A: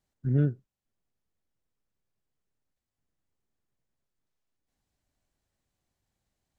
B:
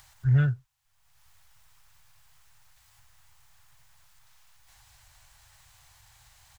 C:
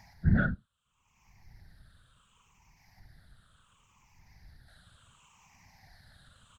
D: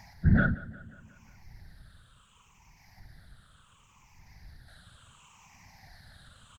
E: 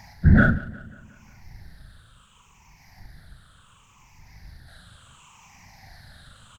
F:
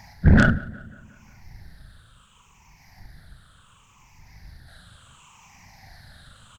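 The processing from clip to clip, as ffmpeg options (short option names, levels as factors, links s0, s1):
-filter_complex "[0:a]firequalizer=gain_entry='entry(130,0);entry(200,-28);entry(860,5)':delay=0.05:min_phase=1,asplit=2[s0][s1];[s1]acompressor=mode=upward:threshold=0.00708:ratio=2.5,volume=1.12[s2];[s0][s2]amix=inputs=2:normalize=0,volume=1.12"
-af "afftfilt=real='re*pow(10,19/40*sin(2*PI*(0.74*log(max(b,1)*sr/1024/100)/log(2)-(-0.7)*(pts-256)/sr)))':imag='im*pow(10,19/40*sin(2*PI*(0.74*log(max(b,1)*sr/1024/100)/log(2)-(-0.7)*(pts-256)/sr)))':win_size=1024:overlap=0.75,aemphasis=mode=reproduction:type=50fm,afftfilt=real='hypot(re,im)*cos(2*PI*random(0))':imag='hypot(re,im)*sin(2*PI*random(1))':win_size=512:overlap=0.75,volume=1.41"
-filter_complex "[0:a]asplit=2[s0][s1];[s1]alimiter=limit=0.0944:level=0:latency=1,volume=1.12[s2];[s0][s2]amix=inputs=2:normalize=0,aecho=1:1:179|358|537|716|895:0.119|0.0666|0.0373|0.0209|0.0117,volume=0.794"
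-filter_complex "[0:a]asplit=2[s0][s1];[s1]aeval=exprs='sgn(val(0))*max(abs(val(0))-0.00562,0)':c=same,volume=0.398[s2];[s0][s2]amix=inputs=2:normalize=0,asplit=2[s3][s4];[s4]adelay=39,volume=0.501[s5];[s3][s5]amix=inputs=2:normalize=0,volume=1.68"
-af "aeval=exprs='0.631*(cos(1*acos(clip(val(0)/0.631,-1,1)))-cos(1*PI/2))+0.1*(cos(6*acos(clip(val(0)/0.631,-1,1)))-cos(6*PI/2))+0.0562*(cos(8*acos(clip(val(0)/0.631,-1,1)))-cos(8*PI/2))':c=same"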